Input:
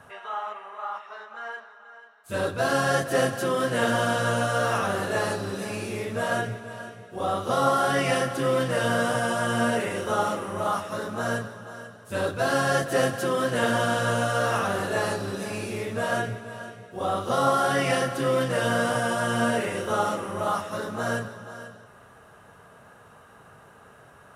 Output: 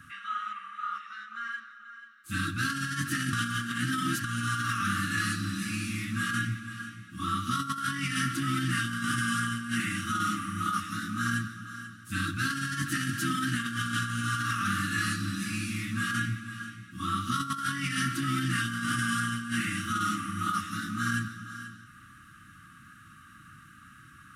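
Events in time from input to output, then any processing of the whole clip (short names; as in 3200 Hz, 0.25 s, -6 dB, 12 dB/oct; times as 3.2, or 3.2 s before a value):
3.33–4.24 reverse
whole clip: FFT band-reject 340–1100 Hz; negative-ratio compressor -29 dBFS, ratio -0.5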